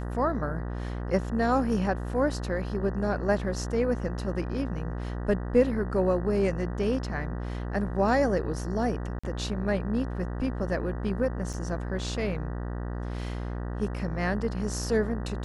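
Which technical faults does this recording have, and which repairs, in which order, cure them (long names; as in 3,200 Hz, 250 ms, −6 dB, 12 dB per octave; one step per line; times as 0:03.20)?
mains buzz 60 Hz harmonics 32 −33 dBFS
0:09.19–0:09.23: drop-out 45 ms
0:11.53–0:11.54: drop-out 6.8 ms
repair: hum removal 60 Hz, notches 32
repair the gap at 0:09.19, 45 ms
repair the gap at 0:11.53, 6.8 ms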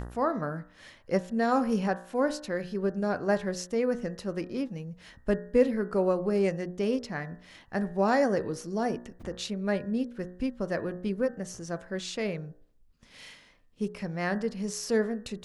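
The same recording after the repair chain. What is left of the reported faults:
none of them is left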